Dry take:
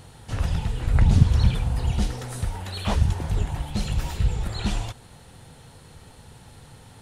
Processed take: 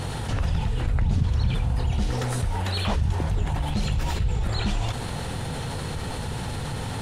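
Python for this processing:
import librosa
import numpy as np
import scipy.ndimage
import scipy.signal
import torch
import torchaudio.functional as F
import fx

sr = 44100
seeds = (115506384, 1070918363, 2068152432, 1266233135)

y = fx.high_shelf(x, sr, hz=7600.0, db=-8.0)
y = fx.env_flatten(y, sr, amount_pct=70)
y = y * 10.0 ** (-8.5 / 20.0)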